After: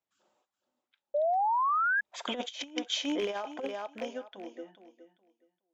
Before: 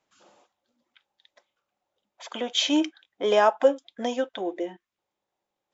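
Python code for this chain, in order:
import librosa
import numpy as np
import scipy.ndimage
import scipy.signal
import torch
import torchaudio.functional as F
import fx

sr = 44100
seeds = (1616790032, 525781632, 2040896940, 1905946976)

y = fx.rattle_buzz(x, sr, strikes_db=-34.0, level_db=-18.0)
y = fx.doppler_pass(y, sr, speed_mps=10, closest_m=2.3, pass_at_s=2.48)
y = fx.echo_feedback(y, sr, ms=417, feedback_pct=20, wet_db=-12)
y = fx.over_compress(y, sr, threshold_db=-33.0, ratio=-0.5)
y = fx.spec_paint(y, sr, seeds[0], shape='rise', start_s=1.14, length_s=0.87, low_hz=570.0, high_hz=1700.0, level_db=-27.0)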